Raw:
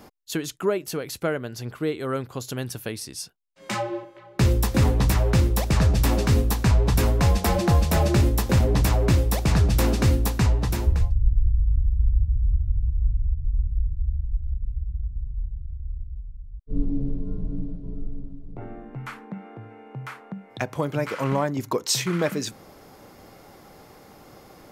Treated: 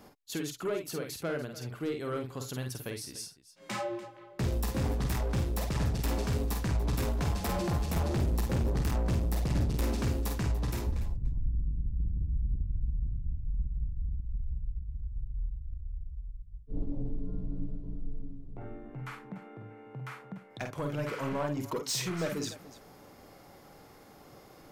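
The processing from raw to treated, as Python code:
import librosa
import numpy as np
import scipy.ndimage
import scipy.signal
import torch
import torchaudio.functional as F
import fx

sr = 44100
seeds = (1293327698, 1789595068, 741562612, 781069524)

y = fx.low_shelf(x, sr, hz=200.0, db=7.0, at=(7.9, 9.82))
y = 10.0 ** (-20.0 / 20.0) * np.tanh(y / 10.0 ** (-20.0 / 20.0))
y = fx.echo_multitap(y, sr, ms=(48, 55, 292), db=(-6.0, -11.5, -16.5))
y = y * 10.0 ** (-7.0 / 20.0)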